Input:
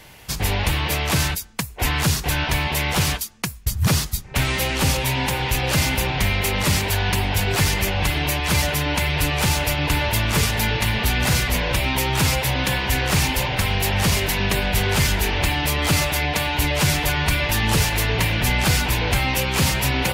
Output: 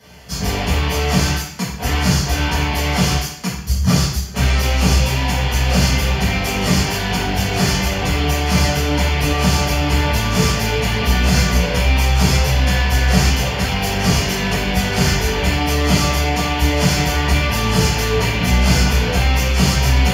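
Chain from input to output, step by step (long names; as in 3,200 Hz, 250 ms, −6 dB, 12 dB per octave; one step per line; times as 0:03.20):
notch filter 3,800 Hz, Q 7.7
convolution reverb RT60 0.70 s, pre-delay 3 ms, DRR −11.5 dB
level −12 dB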